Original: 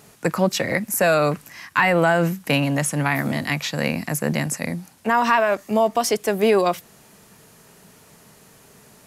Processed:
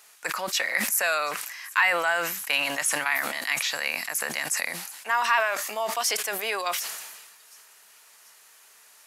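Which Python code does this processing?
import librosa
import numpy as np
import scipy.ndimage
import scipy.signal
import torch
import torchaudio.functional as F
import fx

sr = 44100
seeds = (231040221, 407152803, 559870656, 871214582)

y = scipy.signal.sosfilt(scipy.signal.butter(2, 1200.0, 'highpass', fs=sr, output='sos'), x)
y = fx.echo_wet_highpass(y, sr, ms=735, feedback_pct=53, hz=5000.0, wet_db=-20.5)
y = fx.sustainer(y, sr, db_per_s=41.0)
y = y * librosa.db_to_amplitude(-1.0)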